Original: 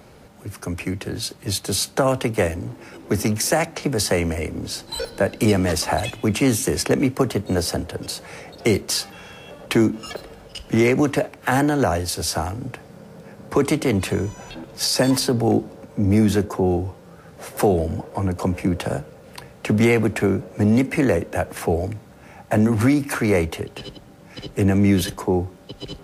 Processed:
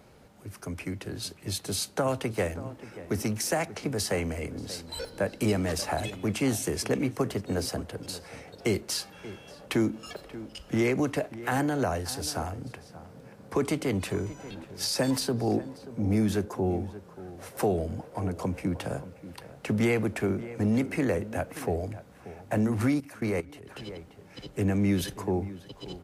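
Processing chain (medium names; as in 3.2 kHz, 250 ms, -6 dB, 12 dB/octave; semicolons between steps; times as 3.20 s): echo from a far wall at 100 m, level -15 dB; 23.00–23.68 s: level held to a coarse grid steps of 19 dB; trim -8.5 dB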